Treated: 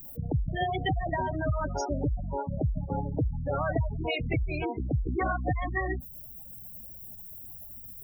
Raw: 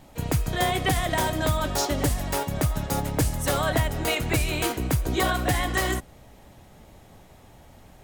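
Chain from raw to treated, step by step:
background noise violet −39 dBFS
gate on every frequency bin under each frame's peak −10 dB strong
level −3 dB

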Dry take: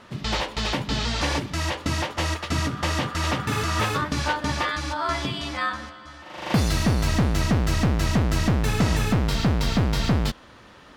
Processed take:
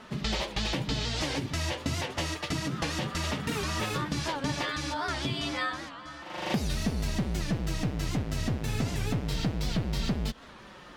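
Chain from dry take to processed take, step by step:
dynamic equaliser 1,200 Hz, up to −6 dB, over −38 dBFS, Q 1.1
downward compressor, threshold −26 dBFS, peak gain reduction 9.5 dB
flanger 0.29 Hz, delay 4.5 ms, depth 3.7 ms, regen −31%
wow of a warped record 78 rpm, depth 160 cents
level +3.5 dB

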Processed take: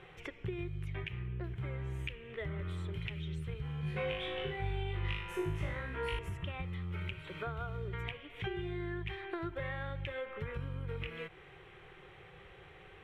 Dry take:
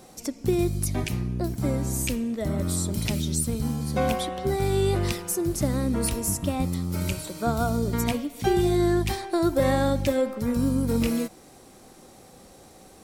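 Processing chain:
drawn EQ curve 160 Hz 0 dB, 240 Hz −26 dB, 390 Hz +1 dB, 610 Hz −10 dB, 1,900 Hz +9 dB, 3,200 Hz +8 dB, 4,600 Hz −19 dB, 9,000 Hz −22 dB, 16,000 Hz −24 dB
downward compressor 6 to 1, threshold −35 dBFS, peak gain reduction 15.5 dB
high-shelf EQ 4,000 Hz −8 dB
0:03.81–0:06.19: flutter between parallel walls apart 3.3 metres, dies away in 0.65 s
level −1.5 dB

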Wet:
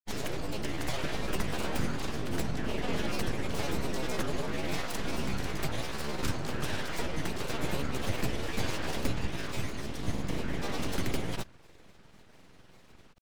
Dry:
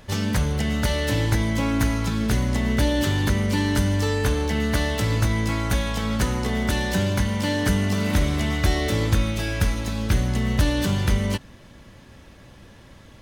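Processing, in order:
granular cloud, pitch spread up and down by 7 semitones
full-wave rectification
level −6.5 dB

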